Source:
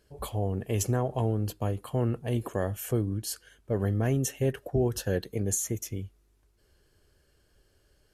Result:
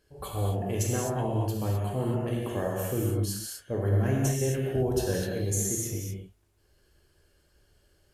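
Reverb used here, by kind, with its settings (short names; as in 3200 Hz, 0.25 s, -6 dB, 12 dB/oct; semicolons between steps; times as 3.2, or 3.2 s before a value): non-linear reverb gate 0.28 s flat, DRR -3.5 dB; gain -3.5 dB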